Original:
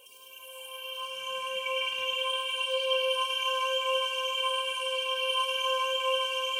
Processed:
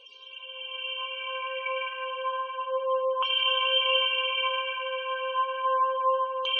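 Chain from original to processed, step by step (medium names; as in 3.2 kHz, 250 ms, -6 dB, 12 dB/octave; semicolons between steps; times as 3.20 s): LFO low-pass saw down 0.31 Hz 880–4200 Hz; spectral gate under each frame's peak -30 dB strong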